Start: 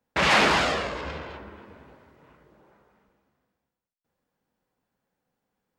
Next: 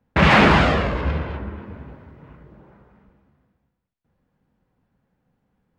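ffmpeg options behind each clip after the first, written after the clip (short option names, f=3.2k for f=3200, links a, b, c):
-af "bass=f=250:g=12,treble=f=4k:g=-13,volume=5.5dB"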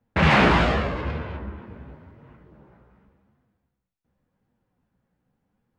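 -af "flanger=delay=8.4:depth=8.9:regen=41:speed=0.88:shape=sinusoidal"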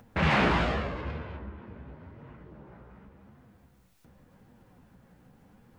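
-af "acompressor=mode=upward:threshold=-31dB:ratio=2.5,volume=-7dB"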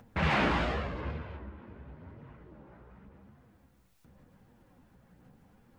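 -af "aphaser=in_gain=1:out_gain=1:delay=3.7:decay=0.25:speed=0.95:type=sinusoidal,volume=-3.5dB"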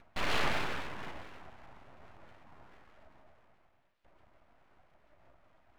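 -af "highpass=f=150:t=q:w=0.5412,highpass=f=150:t=q:w=1.307,lowpass=f=2.4k:t=q:w=0.5176,lowpass=f=2.4k:t=q:w=0.7071,lowpass=f=2.4k:t=q:w=1.932,afreqshift=120,aeval=exprs='abs(val(0))':c=same"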